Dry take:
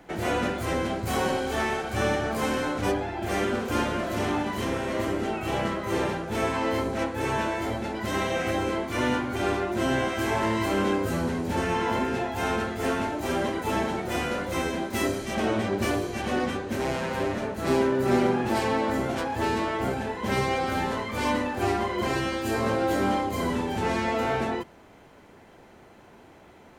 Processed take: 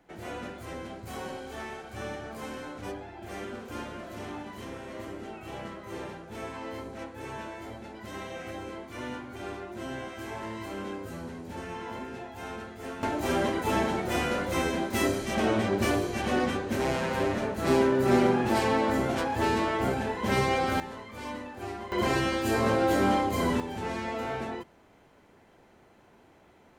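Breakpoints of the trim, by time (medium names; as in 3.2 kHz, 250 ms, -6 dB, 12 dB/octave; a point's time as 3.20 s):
-12 dB
from 13.03 s 0 dB
from 20.80 s -12 dB
from 21.92 s +0.5 dB
from 23.60 s -7 dB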